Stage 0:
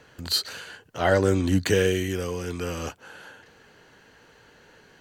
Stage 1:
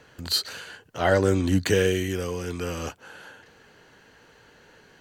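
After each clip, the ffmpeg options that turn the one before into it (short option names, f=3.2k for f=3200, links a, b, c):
-af anull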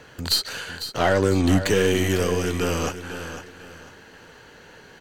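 -filter_complex "[0:a]alimiter=limit=-16dB:level=0:latency=1:release=238,aeval=exprs='0.158*(cos(1*acos(clip(val(0)/0.158,-1,1)))-cos(1*PI/2))+0.01*(cos(6*acos(clip(val(0)/0.158,-1,1)))-cos(6*PI/2))':c=same,asplit=2[a][b];[b]aecho=0:1:501|1002|1503:0.282|0.0817|0.0237[c];[a][c]amix=inputs=2:normalize=0,volume=6.5dB"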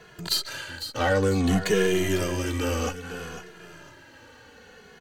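-filter_complex "[0:a]asplit=2[a][b];[b]adelay=2.4,afreqshift=-0.59[c];[a][c]amix=inputs=2:normalize=1"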